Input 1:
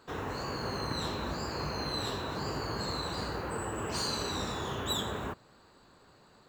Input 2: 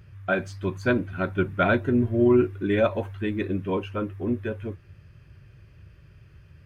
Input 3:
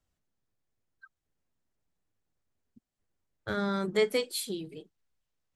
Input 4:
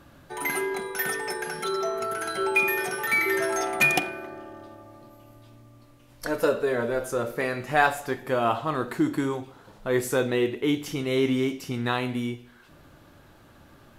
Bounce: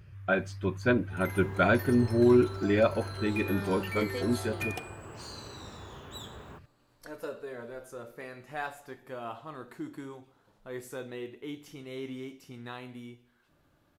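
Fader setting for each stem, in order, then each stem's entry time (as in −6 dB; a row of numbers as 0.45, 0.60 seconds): −11.5, −2.5, −9.0, −15.5 decibels; 1.25, 0.00, 0.00, 0.80 seconds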